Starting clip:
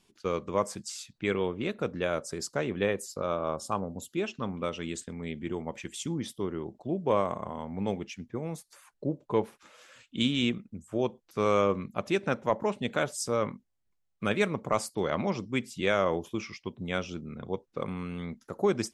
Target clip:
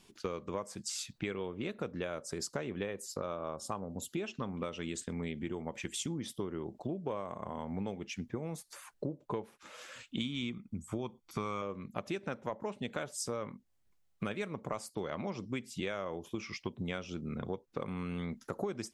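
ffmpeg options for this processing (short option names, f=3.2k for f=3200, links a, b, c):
-filter_complex "[0:a]asettb=1/sr,asplit=3[a][b][c];[a]atrim=end=10.204[d];[b]atrim=start=10.2:end=11.62,asetpts=PTS-STARTPTS,afade=t=in:d=0.004:c=qsin,afade=t=out:st=1.416:d=0.004:c=qsin,aecho=1:1:0.9:0.5,atrim=end_sample=62622[e];[c]atrim=start=11.616[f];[d][e]acrossfade=d=0.004:c1=hsin:c2=qsin[g];[g][f]acrossfade=d=0.004:c1=qsin:c2=hsin,acompressor=threshold=-39dB:ratio=10,volume=5dB"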